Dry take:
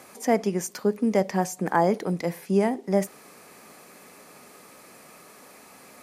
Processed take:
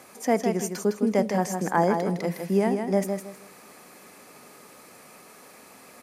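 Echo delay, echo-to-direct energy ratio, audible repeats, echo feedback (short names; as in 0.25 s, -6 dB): 0.159 s, -5.5 dB, 3, 25%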